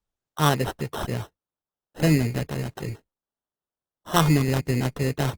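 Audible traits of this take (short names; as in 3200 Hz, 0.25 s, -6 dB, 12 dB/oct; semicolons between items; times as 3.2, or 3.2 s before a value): aliases and images of a low sample rate 2300 Hz, jitter 0%; Opus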